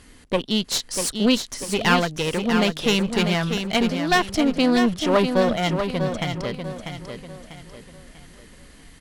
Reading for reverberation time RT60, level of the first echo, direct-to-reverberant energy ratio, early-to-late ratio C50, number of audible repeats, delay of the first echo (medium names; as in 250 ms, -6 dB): no reverb, -7.0 dB, no reverb, no reverb, 4, 644 ms